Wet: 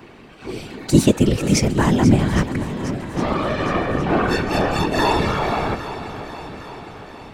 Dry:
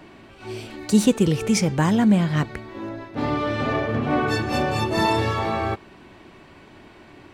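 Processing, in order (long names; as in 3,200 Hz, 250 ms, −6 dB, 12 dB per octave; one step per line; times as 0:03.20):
random phases in short frames
feedback echo with a long and a short gap by turns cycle 811 ms, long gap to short 1.5 to 1, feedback 49%, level −12.5 dB
level +2.5 dB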